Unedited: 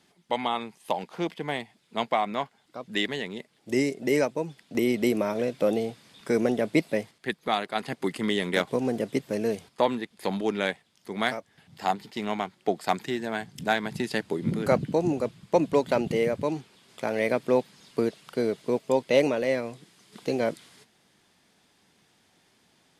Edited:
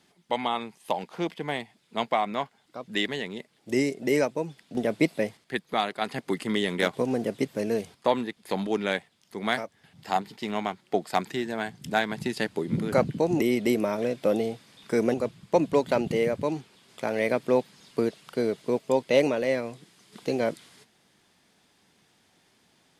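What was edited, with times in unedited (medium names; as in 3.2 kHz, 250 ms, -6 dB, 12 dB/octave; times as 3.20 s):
4.77–6.51 s: move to 15.14 s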